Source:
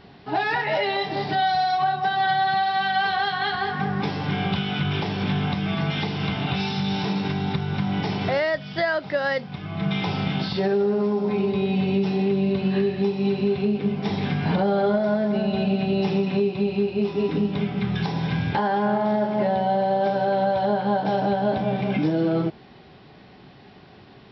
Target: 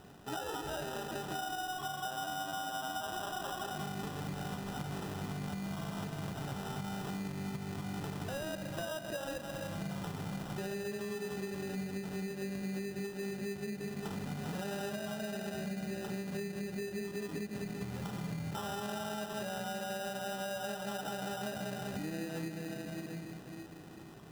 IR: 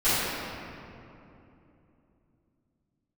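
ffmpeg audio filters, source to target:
-filter_complex "[0:a]asplit=2[a][b];[1:a]atrim=start_sample=2205,adelay=119[c];[b][c]afir=irnorm=-1:irlink=0,volume=-24dB[d];[a][d]amix=inputs=2:normalize=0,acrusher=samples=20:mix=1:aa=0.000001,acompressor=threshold=-30dB:ratio=6,volume=-7dB"

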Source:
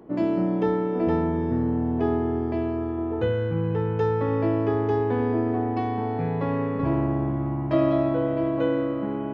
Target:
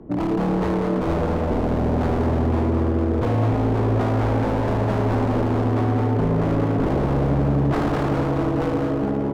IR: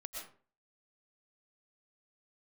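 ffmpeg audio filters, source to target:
-filter_complex "[0:a]aemphasis=mode=reproduction:type=riaa,aeval=exprs='0.168*(abs(mod(val(0)/0.168+3,4)-2)-1)':c=same,acrossover=split=210|3000[a][b][c];[b]acompressor=threshold=-23dB:ratio=6[d];[a][d][c]amix=inputs=3:normalize=0,asplit=2[e][f];[f]asplit=5[g][h][i][j][k];[g]adelay=203,afreqshift=150,volume=-6dB[l];[h]adelay=406,afreqshift=300,volume=-14dB[m];[i]adelay=609,afreqshift=450,volume=-21.9dB[n];[j]adelay=812,afreqshift=600,volume=-29.9dB[o];[k]adelay=1015,afreqshift=750,volume=-37.8dB[p];[l][m][n][o][p]amix=inputs=5:normalize=0[q];[e][q]amix=inputs=2:normalize=0"

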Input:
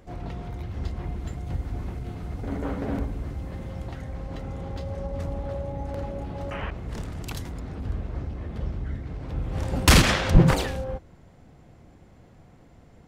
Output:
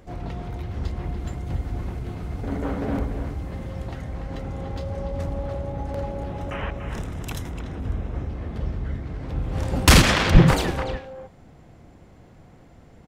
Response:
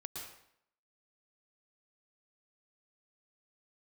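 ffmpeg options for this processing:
-filter_complex "[0:a]asettb=1/sr,asplit=3[a][b][c];[a]atrim=end=6.294[d];[b]atrim=start=6.29:end=8.29,asetpts=PTS-STARTPTS,afade=t=in:d=0.004:c=qsin,afade=t=out:st=1.996:d=0.004:c=qsin,bandreject=f=4.5k:w=5.3[e];[c]atrim=start=8.286[f];[d][e]acrossfade=d=0.004:c1=hsin:c2=qsin[g];[g][f]acrossfade=d=0.004:c1=qsin:c2=hsin,asplit=2[h][i];[i]adelay=290,highpass=300,lowpass=3.4k,asoftclip=type=hard:threshold=-12dB,volume=-7dB[j];[h][j]amix=inputs=2:normalize=0,volume=2.5dB"

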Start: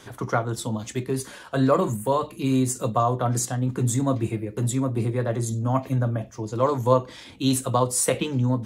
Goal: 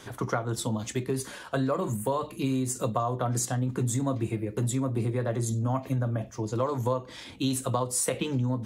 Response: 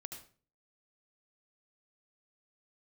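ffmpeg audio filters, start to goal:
-af "acompressor=threshold=-24dB:ratio=6"

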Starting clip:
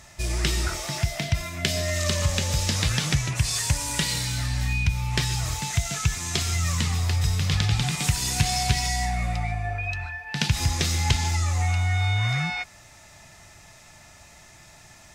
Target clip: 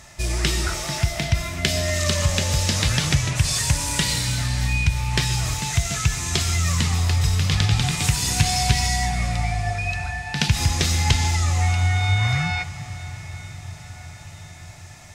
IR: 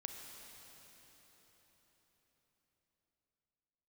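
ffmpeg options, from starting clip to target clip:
-filter_complex "[0:a]asplit=2[a][b];[1:a]atrim=start_sample=2205,asetrate=24255,aresample=44100[c];[b][c]afir=irnorm=-1:irlink=0,volume=-5.5dB[d];[a][d]amix=inputs=2:normalize=0"

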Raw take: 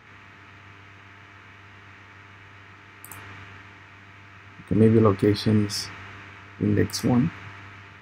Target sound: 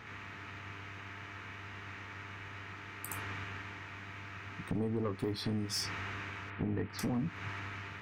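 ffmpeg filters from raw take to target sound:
-filter_complex "[0:a]asettb=1/sr,asplit=3[a][b][c];[a]atrim=end=6.504[d];[b]atrim=start=6.5:end=6.99,asetpts=PTS-STARTPTS,afade=t=in:d=0.004:c=qsin,afade=t=out:st=0.486:d=0.004:c=qsin,lowpass=f=3.3k:w=0.5412,lowpass=f=3.3k:w=1.3066[e];[c]atrim=start=6.986[f];[d][e]acrossfade=d=0.004:c1=hsin:c2=qsin[g];[g][f]acrossfade=d=0.004:c1=qsin:c2=hsin,acompressor=threshold=-30dB:ratio=8,asoftclip=type=tanh:threshold=-27.5dB,volume=1dB"

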